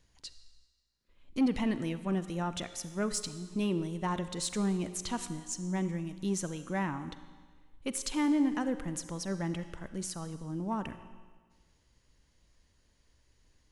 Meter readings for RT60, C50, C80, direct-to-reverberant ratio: 1.5 s, 12.0 dB, 13.0 dB, 11.5 dB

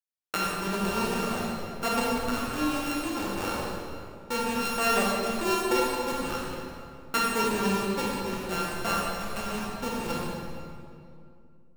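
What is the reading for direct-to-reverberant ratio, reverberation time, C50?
-4.5 dB, 2.4 s, -3.0 dB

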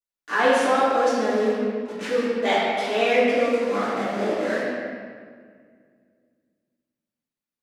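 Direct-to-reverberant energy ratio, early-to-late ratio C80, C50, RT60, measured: -12.0 dB, -0.5 dB, -2.5 dB, 1.8 s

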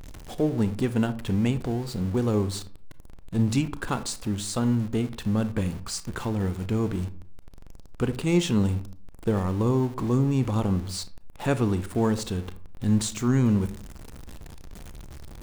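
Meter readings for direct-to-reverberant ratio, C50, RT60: 12.0 dB, 15.5 dB, 0.50 s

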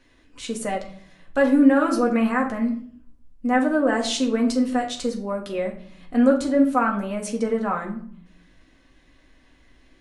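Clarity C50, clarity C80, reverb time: 10.0 dB, 14.0 dB, 0.55 s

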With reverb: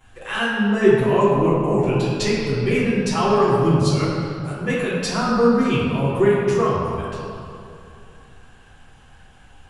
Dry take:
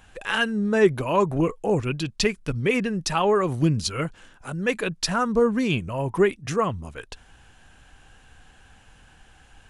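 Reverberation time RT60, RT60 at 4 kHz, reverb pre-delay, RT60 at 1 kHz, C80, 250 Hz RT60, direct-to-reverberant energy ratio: 2.6 s, 1.4 s, 7 ms, 2.6 s, 0.0 dB, 2.8 s, -12.5 dB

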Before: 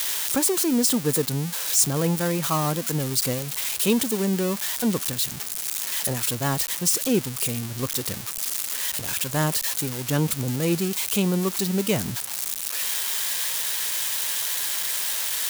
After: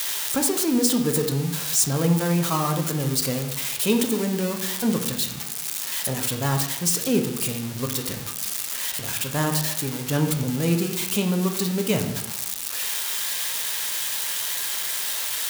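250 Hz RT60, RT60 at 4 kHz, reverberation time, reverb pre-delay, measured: 1.0 s, 0.65 s, 0.90 s, 3 ms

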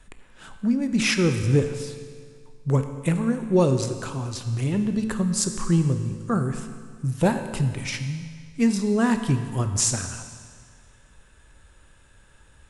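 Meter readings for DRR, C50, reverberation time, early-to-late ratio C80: 7.0 dB, 8.5 dB, 1.9 s, 9.5 dB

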